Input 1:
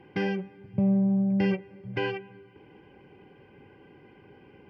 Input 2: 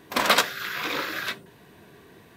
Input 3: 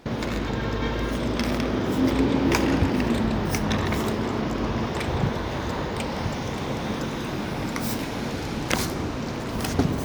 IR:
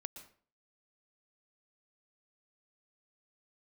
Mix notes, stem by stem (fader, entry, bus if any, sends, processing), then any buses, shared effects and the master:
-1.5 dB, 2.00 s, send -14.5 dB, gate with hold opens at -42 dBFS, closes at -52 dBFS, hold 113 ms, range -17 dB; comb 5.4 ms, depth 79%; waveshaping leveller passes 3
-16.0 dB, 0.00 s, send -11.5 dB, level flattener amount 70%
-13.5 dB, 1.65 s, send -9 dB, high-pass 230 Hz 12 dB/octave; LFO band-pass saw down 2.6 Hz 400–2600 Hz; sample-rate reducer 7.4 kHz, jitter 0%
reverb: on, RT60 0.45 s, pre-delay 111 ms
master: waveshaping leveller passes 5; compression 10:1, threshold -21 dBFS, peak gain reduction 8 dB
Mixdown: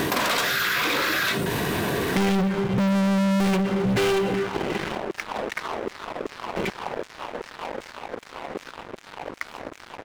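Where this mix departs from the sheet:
stem 1: send -14.5 dB -> -8.5 dB; stem 3: missing sample-rate reducer 7.4 kHz, jitter 0%

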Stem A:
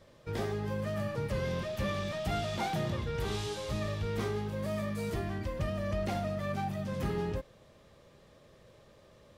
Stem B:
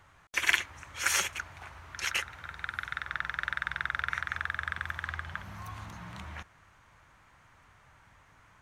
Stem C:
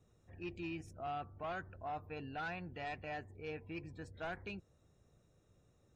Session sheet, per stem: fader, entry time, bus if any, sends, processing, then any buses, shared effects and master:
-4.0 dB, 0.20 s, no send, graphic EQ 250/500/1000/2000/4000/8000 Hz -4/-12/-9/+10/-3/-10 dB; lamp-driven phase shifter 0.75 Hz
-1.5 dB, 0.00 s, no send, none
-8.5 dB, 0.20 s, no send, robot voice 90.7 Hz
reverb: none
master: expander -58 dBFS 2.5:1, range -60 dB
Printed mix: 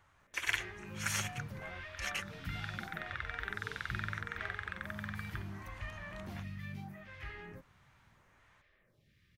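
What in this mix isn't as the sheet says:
stem B -1.5 dB -> -8.0 dB; master: missing expander -58 dBFS 2.5:1, range -60 dB

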